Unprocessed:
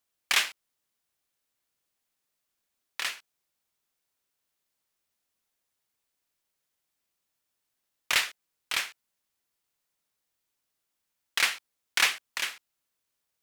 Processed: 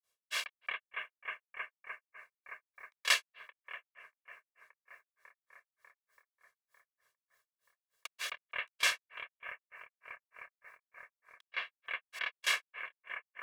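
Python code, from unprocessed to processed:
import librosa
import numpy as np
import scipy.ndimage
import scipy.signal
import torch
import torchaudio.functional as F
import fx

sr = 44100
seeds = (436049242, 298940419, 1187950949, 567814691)

y = fx.low_shelf(x, sr, hz=150.0, db=-9.5)
y = y + 0.81 * np.pad(y, (int(1.8 * sr / 1000.0), 0))[:len(y)]
y = fx.echo_bbd(y, sr, ms=231, stages=4096, feedback_pct=84, wet_db=-12.5)
y = fx.granulator(y, sr, seeds[0], grain_ms=199.0, per_s=3.3, spray_ms=100.0, spread_st=0)
y = fx.rider(y, sr, range_db=4, speed_s=2.0)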